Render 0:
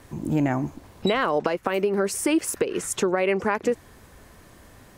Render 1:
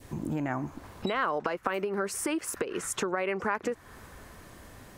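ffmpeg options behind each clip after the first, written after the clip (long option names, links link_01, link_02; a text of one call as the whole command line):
ffmpeg -i in.wav -af "acompressor=threshold=-32dB:ratio=3,adynamicequalizer=threshold=0.00282:dfrequency=1300:dqfactor=1.1:tfrequency=1300:tqfactor=1.1:attack=5:release=100:ratio=0.375:range=4:mode=boostabove:tftype=bell" out.wav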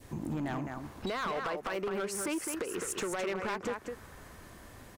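ffmpeg -i in.wav -af "aecho=1:1:210:0.447,asoftclip=type=hard:threshold=-27dB,volume=-2.5dB" out.wav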